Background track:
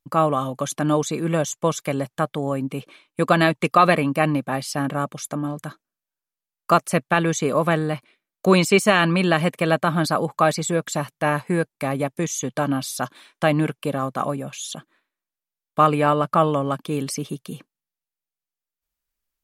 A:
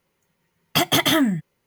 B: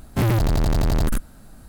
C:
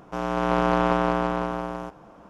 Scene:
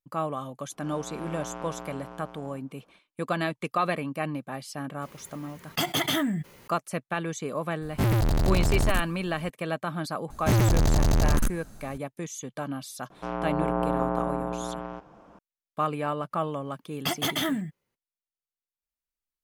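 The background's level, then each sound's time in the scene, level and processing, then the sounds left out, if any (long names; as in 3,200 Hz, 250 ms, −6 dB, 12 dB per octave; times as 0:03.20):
background track −11 dB
0:00.70: mix in C −17 dB
0:05.02: mix in A −9 dB + envelope flattener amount 50%
0:07.82: mix in B −4 dB
0:10.30: mix in B −2 dB + parametric band 6,300 Hz +9.5 dB 0.25 octaves
0:13.10: mix in C −4 dB + treble cut that deepens with the level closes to 1,000 Hz, closed at −21 dBFS
0:16.30: mix in A −9.5 dB, fades 0.02 s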